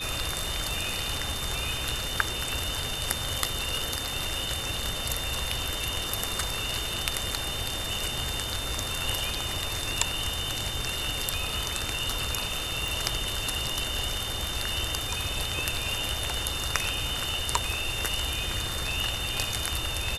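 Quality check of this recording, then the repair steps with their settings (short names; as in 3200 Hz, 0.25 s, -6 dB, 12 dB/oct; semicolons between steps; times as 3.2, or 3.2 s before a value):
tone 3600 Hz -35 dBFS
12.88 pop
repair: de-click; notch 3600 Hz, Q 30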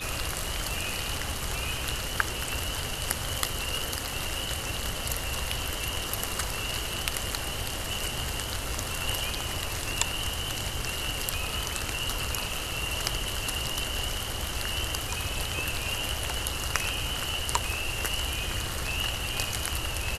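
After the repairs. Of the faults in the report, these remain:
none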